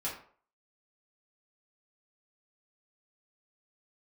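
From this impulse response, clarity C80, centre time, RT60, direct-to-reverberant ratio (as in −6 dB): 10.0 dB, 31 ms, 0.50 s, −7.5 dB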